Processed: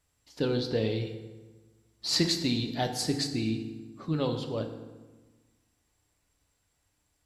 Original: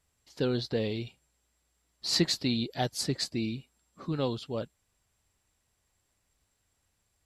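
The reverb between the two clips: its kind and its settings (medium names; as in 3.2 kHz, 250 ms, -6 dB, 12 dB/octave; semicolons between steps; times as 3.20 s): FDN reverb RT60 1.3 s, low-frequency decay 1.25×, high-frequency decay 0.7×, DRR 5 dB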